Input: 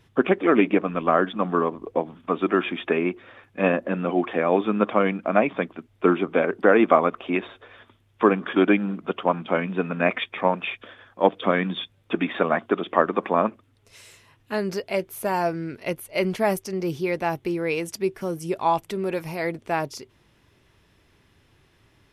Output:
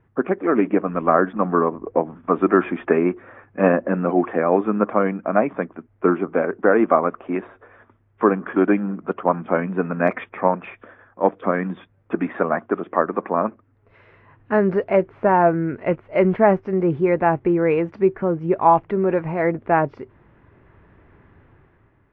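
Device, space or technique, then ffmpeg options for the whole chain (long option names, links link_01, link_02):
action camera in a waterproof case: -af "lowpass=frequency=1800:width=0.5412,lowpass=frequency=1800:width=1.3066,dynaudnorm=framelen=160:gausssize=9:maxgain=11.5dB,volume=-1.5dB" -ar 22050 -c:a aac -b:a 48k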